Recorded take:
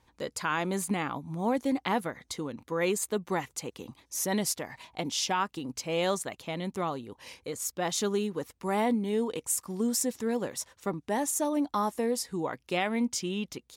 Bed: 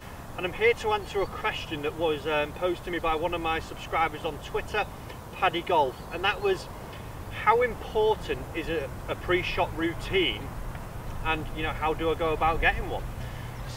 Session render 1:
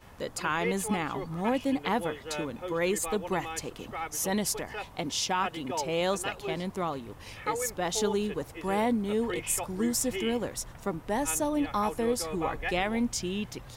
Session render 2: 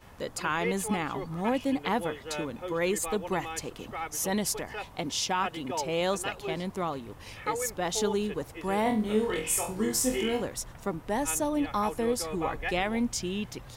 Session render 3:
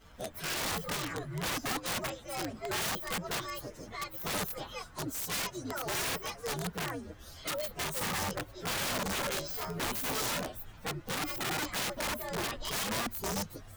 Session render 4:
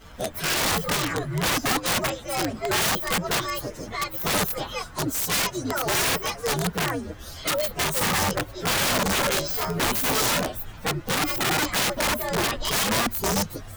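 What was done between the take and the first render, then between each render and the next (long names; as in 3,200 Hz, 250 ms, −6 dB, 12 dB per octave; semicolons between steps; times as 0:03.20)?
mix in bed −10.5 dB
0:08.83–0:10.42: flutter between parallel walls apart 4 metres, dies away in 0.32 s
partials spread apart or drawn together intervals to 130%; wrap-around overflow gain 28.5 dB
level +10.5 dB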